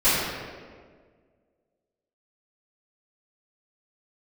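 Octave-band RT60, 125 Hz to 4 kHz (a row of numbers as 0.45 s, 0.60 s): 1.9 s, 2.0 s, 1.9 s, 1.5 s, 1.4 s, 1.1 s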